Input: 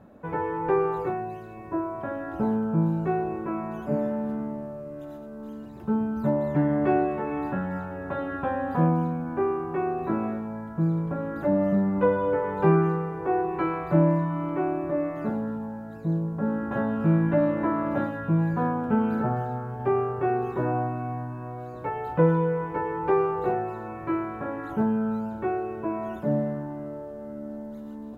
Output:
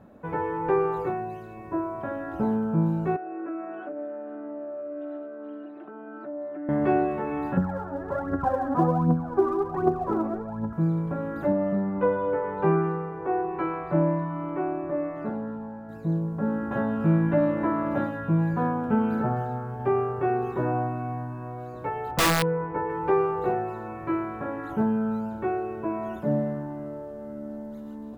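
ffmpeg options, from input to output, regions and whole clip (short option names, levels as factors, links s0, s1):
-filter_complex "[0:a]asettb=1/sr,asplit=3[s0][s1][s2];[s0]atrim=end=3.164[s3];[s1]atrim=start=3.16:end=6.69,asetpts=PTS-STARTPTS,afade=t=in:d=0.004:c=qsin,afade=t=out:st=3.526:d=0.004:c=qsin,aecho=1:1:6.6:0.52,atrim=end_sample=155673,acompressor=threshold=0.0251:ratio=12:attack=3.2:release=140:knee=1:detection=peak,highpass=f=310:w=0.5412,highpass=f=310:w=1.3066,equalizer=f=310:t=q:w=4:g=9,equalizer=f=450:t=q:w=4:g=-7,equalizer=f=650:t=q:w=4:g=7,equalizer=f=940:t=q:w=4:g=-9,equalizer=f=1400:t=q:w=4:g=5,equalizer=f=2100:t=q:w=4:g=-3,lowpass=f=2800:w=0.5412,lowpass=f=2800:w=1.3066[s4];[s2]atrim=start=6.686[s5];[s3][s4]acrossfade=d=0.004:c1=hsin:c2=qsin[s6];[s6][s5]acrossfade=d=0.004:c1=qsin:c2=hsin,asettb=1/sr,asplit=3[s7][s8][s9];[s7]atrim=end=7.574[s10];[s8]atrim=start=7.57:end=10.73,asetpts=PTS-STARTPTS,afade=t=in:d=0.004:c=qsin,afade=t=out:st=3.156:d=0.004:c=qsin,lowpass=f=1400:w=0.5412,lowpass=f=1400:w=1.3066,aphaser=in_gain=1:out_gain=1:delay=3.6:decay=0.69:speed=1.3:type=triangular[s11];[s9]atrim=start=10.726[s12];[s10][s11]acrossfade=d=0.004:c1=hsin:c2=qsin[s13];[s13][s12]acrossfade=d=0.004:c1=qsin:c2=hsin,asettb=1/sr,asplit=3[s14][s15][s16];[s14]atrim=end=11.524[s17];[s15]atrim=start=11.52:end=15.89,asetpts=PTS-STARTPTS,afade=t=in:d=0.004:c=qsin,afade=t=out:st=4.366:d=0.004:c=qsin,lowpass=f=2100:p=1,equalizer=f=80:w=0.31:g=-5[s18];[s16]atrim=start=15.886[s19];[s17][s18]acrossfade=d=0.004:c1=hsin:c2=qsin[s20];[s20][s19]acrossfade=d=0.004:c1=qsin:c2=hsin,asettb=1/sr,asplit=3[s21][s22][s23];[s21]atrim=end=22.114[s24];[s22]atrim=start=22.11:end=22.9,asetpts=PTS-STARTPTS,afade=t=in:d=0.004:c=qsin,afade=t=out:st=0.786:d=0.004:c=qsin,lowpass=2100,aeval=exprs='(mod(6.31*val(0)+1,2)-1)/6.31':c=same[s25];[s23]atrim=start=22.896[s26];[s24][s25]acrossfade=d=0.004:c1=hsin:c2=qsin[s27];[s27][s26]acrossfade=d=0.004:c1=qsin:c2=hsin"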